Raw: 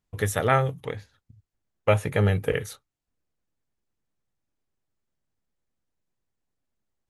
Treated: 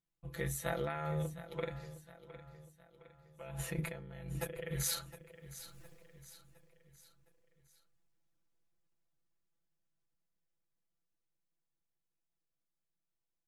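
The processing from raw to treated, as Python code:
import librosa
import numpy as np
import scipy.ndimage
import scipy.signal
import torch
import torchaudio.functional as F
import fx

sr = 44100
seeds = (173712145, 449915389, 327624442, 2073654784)

y = fx.doppler_pass(x, sr, speed_mps=16, closest_m=1.0, pass_at_s=3.07)
y = fx.over_compress(y, sr, threshold_db=-57.0, ratio=-1.0)
y = fx.stretch_grains(y, sr, factor=1.9, grain_ms=25.0)
y = fx.echo_feedback(y, sr, ms=712, feedback_pct=46, wet_db=-14.5)
y = F.gain(torch.from_numpy(y), 18.0).numpy()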